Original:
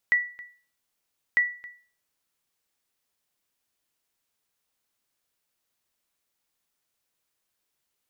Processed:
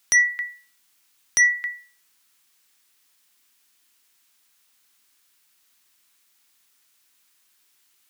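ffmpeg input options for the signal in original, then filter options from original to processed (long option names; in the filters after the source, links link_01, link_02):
-f lavfi -i "aevalsrc='0.2*(sin(2*PI*1950*mod(t,1.25))*exp(-6.91*mod(t,1.25)/0.4)+0.1*sin(2*PI*1950*max(mod(t,1.25)-0.27,0))*exp(-6.91*max(mod(t,1.25)-0.27,0)/0.4))':duration=2.5:sample_rate=44100"
-filter_complex "[0:a]equalizer=frequency=560:width_type=o:width=1.3:gain=-14,bandreject=frequency=60:width_type=h:width=6,bandreject=frequency=120:width_type=h:width=6,acrossover=split=240[link_01][link_02];[link_02]aeval=exprs='0.237*sin(PI/2*3.98*val(0)/0.237)':channel_layout=same[link_03];[link_01][link_03]amix=inputs=2:normalize=0"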